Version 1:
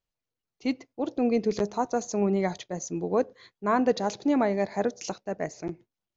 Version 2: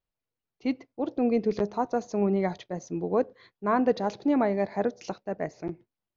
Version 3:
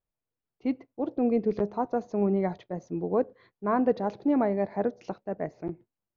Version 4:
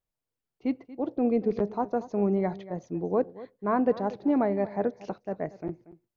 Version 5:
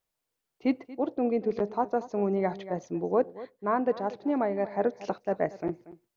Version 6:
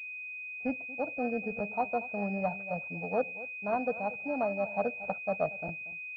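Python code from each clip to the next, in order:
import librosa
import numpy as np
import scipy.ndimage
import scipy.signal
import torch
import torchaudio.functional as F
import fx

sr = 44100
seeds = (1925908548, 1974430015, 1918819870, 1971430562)

y1 = scipy.signal.sosfilt(scipy.signal.butter(4, 5900.0, 'lowpass', fs=sr, output='sos'), x)
y1 = fx.high_shelf(y1, sr, hz=3900.0, db=-10.0)
y2 = fx.lowpass(y1, sr, hz=1300.0, slope=6)
y3 = y2 + 10.0 ** (-17.5 / 20.0) * np.pad(y2, (int(234 * sr / 1000.0), 0))[:len(y2)]
y4 = fx.low_shelf(y3, sr, hz=250.0, db=-10.5)
y4 = fx.rider(y4, sr, range_db=4, speed_s=0.5)
y4 = y4 * librosa.db_to_amplitude(3.0)
y5 = y4 + 0.99 * np.pad(y4, (int(1.4 * sr / 1000.0), 0))[:len(y4)]
y5 = fx.pwm(y5, sr, carrier_hz=2500.0)
y5 = y5 * librosa.db_to_amplitude(-6.0)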